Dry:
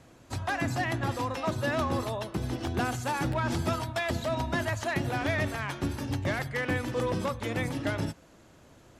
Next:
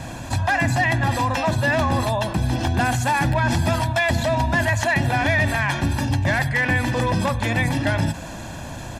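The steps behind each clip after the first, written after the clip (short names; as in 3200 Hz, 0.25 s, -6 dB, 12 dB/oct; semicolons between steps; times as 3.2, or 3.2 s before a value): dynamic EQ 2000 Hz, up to +6 dB, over -51 dBFS, Q 4.7; comb 1.2 ms, depth 62%; fast leveller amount 50%; gain +5.5 dB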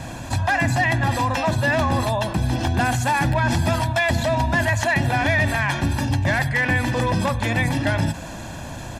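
nothing audible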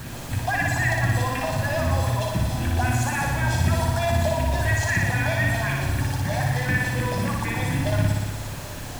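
phaser stages 4, 3.9 Hz, lowest notch 210–1000 Hz; added noise pink -37 dBFS; flutter echo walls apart 10.1 m, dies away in 1.3 s; gain -4 dB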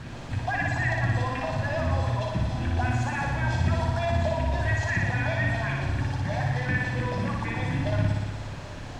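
air absorption 120 m; gain -3 dB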